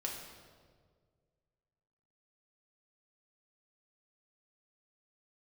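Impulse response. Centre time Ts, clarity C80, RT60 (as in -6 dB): 57 ms, 5.5 dB, 1.8 s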